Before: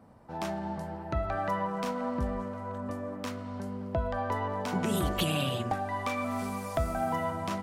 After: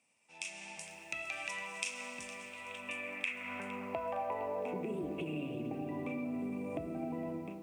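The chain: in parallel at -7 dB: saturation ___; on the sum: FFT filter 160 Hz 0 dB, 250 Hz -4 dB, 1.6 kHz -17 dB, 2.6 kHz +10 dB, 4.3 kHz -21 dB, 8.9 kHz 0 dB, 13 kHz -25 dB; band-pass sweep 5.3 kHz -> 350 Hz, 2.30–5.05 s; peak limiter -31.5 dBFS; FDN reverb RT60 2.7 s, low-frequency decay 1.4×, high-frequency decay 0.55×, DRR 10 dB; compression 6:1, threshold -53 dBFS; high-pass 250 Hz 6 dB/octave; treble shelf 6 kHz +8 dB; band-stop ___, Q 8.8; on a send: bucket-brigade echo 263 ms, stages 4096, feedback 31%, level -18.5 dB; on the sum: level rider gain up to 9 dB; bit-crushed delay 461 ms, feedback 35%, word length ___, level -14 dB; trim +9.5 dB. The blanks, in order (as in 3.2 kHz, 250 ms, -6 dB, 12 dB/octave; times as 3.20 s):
-30 dBFS, 3 kHz, 11-bit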